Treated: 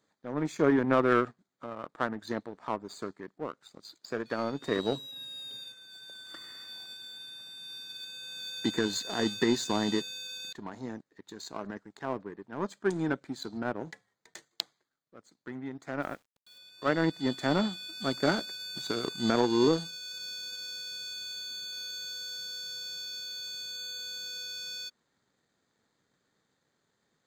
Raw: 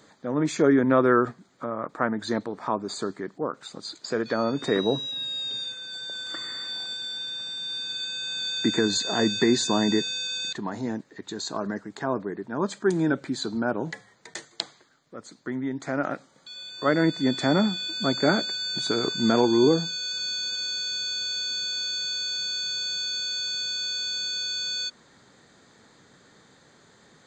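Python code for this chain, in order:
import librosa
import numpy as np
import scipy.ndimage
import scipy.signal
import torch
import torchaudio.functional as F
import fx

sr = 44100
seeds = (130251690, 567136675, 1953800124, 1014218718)

y = fx.quant_dither(x, sr, seeds[0], bits=8, dither='none', at=(16.02, 16.58))
y = fx.power_curve(y, sr, exponent=1.4)
y = y * 10.0 ** (-2.0 / 20.0)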